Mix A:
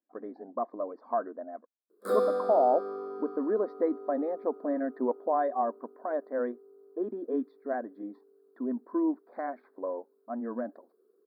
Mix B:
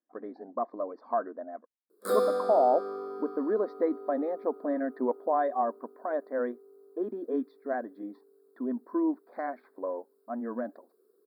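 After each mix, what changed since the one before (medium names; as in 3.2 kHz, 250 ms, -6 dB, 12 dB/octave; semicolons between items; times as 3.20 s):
master: add treble shelf 2.7 kHz +9 dB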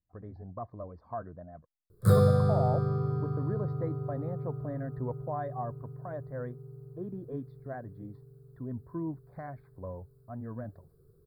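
speech -9.0 dB; master: remove brick-wall FIR high-pass 220 Hz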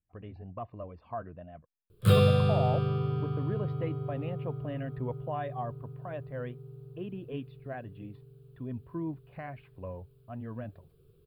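master: remove Butterworth band-stop 2.8 kHz, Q 0.91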